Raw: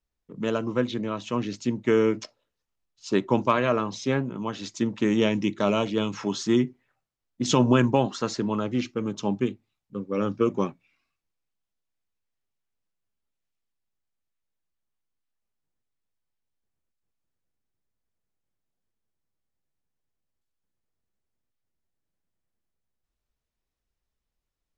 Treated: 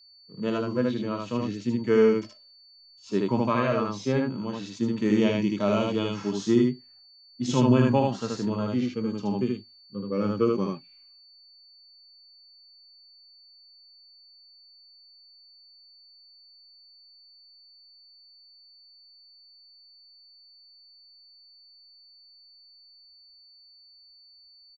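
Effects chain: echo 77 ms -3.5 dB; whine 4500 Hz -52 dBFS; harmonic-percussive split percussive -17 dB

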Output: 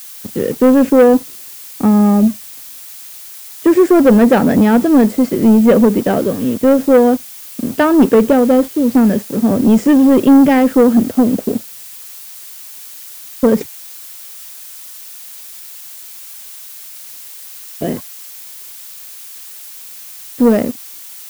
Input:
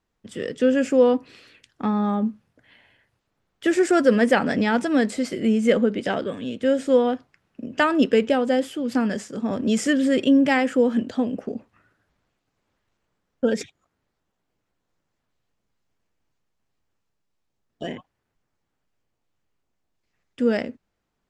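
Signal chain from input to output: tilt shelf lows +8.5 dB, about 1100 Hz; sample leveller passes 2; added noise blue -32 dBFS; gain -1.5 dB

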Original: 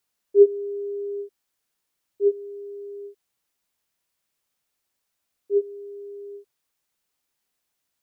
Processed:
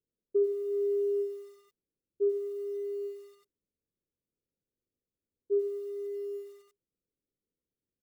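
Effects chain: steep low-pass 510 Hz 48 dB/oct; compressor 8:1, threshold -25 dBFS, peak gain reduction 16 dB; on a send: feedback echo 67 ms, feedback 59%, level -20 dB; on the sum: lo-fi delay 92 ms, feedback 55%, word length 9-bit, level -12 dB

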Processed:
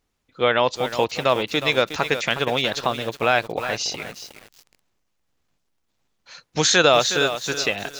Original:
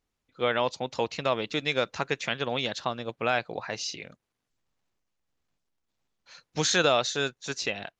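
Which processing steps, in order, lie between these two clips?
dynamic EQ 190 Hz, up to -3 dB, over -40 dBFS, Q 1.2; lo-fi delay 0.364 s, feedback 35%, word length 7-bit, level -10 dB; gain +7.5 dB

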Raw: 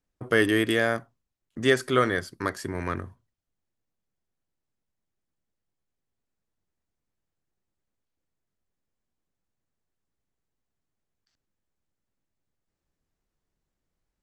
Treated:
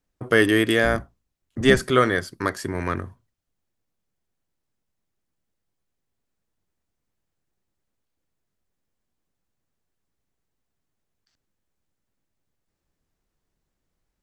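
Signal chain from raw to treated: 0.83–1.91 octaver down 1 oct, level 0 dB; gain +4 dB

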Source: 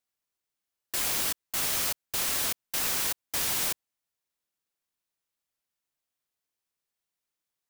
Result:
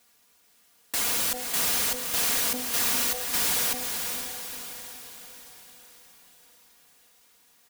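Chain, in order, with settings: HPF 42 Hz; comb 4.2 ms, depth 89%; de-hum 250.4 Hz, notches 3; in parallel at 0 dB: negative-ratio compressor -37 dBFS, ratio -0.5; on the sum: overloaded stage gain 29 dB; on a send: diffused feedback echo 0.481 s, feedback 52%, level -5.5 dB; on the sum: gain +4.5 dB

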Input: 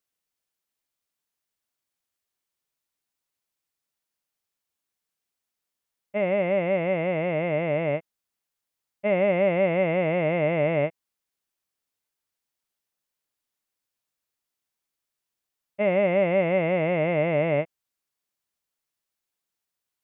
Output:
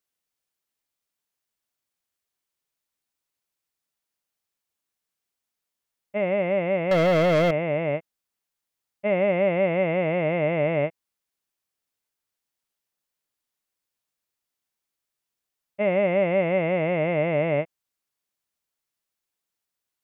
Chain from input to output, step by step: 6.91–7.51 sample leveller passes 3

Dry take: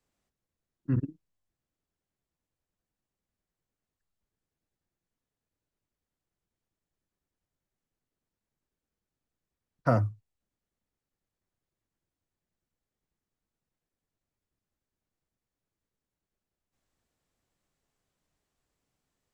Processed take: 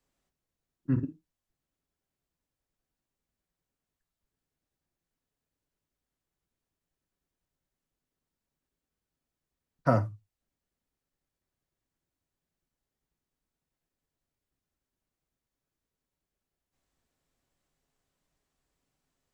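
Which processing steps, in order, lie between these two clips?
non-linear reverb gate 0.1 s falling, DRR 9 dB

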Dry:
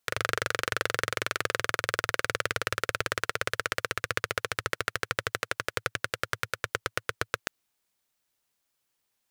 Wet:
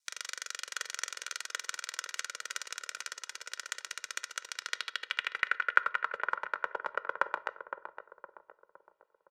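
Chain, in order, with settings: HPF 95 Hz 6 dB/oct; ring modulator 76 Hz; comb 2.1 ms, depth 75%; in parallel at +2.5 dB: level quantiser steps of 14 dB; on the sum: bell 1300 Hz +6.5 dB 2.3 oct; soft clip -2 dBFS, distortion -17 dB; band-pass sweep 6300 Hz -> 860 Hz, 4.46–6.26; darkening echo 0.513 s, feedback 51%, low-pass 1100 Hz, level -7 dB; on a send at -16 dB: reverb RT60 0.50 s, pre-delay 6 ms; on the sum: AAC 96 kbps 48000 Hz

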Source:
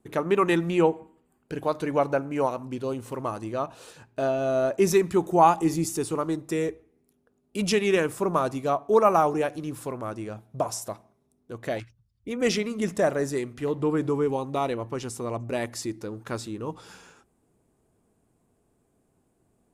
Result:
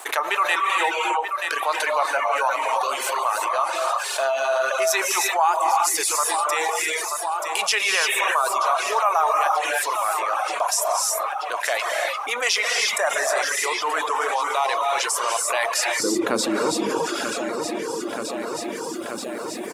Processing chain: feedback echo 0.931 s, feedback 48%, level -17.5 dB; non-linear reverb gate 0.37 s rising, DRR 0.5 dB; reverb removal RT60 0.72 s; HPF 780 Hz 24 dB/oct, from 16 s 240 Hz; fast leveller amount 70%

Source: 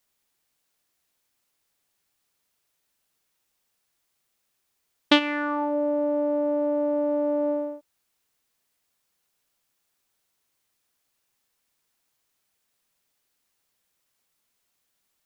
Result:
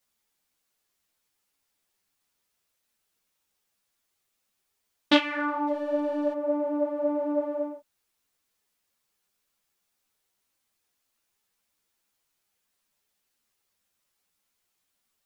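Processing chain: 5.67–6.33 backlash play -36 dBFS; ensemble effect; gain +1 dB

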